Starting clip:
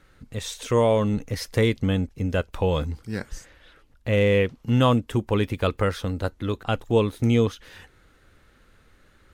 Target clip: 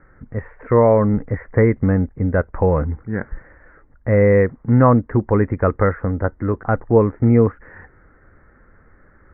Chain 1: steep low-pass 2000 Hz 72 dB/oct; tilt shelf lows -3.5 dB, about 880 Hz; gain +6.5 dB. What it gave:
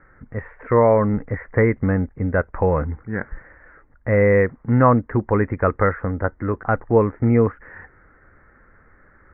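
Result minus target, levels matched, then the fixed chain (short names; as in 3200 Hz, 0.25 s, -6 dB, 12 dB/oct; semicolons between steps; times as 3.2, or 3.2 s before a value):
1000 Hz band +2.5 dB
steep low-pass 2000 Hz 72 dB/oct; gain +6.5 dB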